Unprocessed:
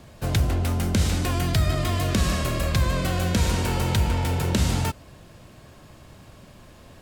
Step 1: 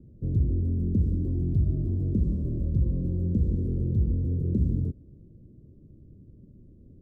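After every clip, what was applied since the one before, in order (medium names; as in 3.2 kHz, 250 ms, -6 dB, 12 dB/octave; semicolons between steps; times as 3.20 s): inverse Chebyshev low-pass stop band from 760 Hz, stop band 40 dB; trim -2 dB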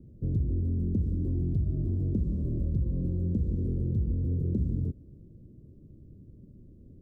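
compression 3:1, threshold -25 dBFS, peak gain reduction 5.5 dB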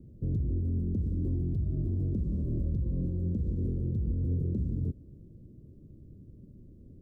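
peak limiter -23.5 dBFS, peak gain reduction 5 dB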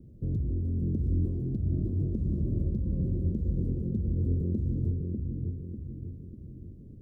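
bucket-brigade echo 595 ms, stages 2048, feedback 48%, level -3 dB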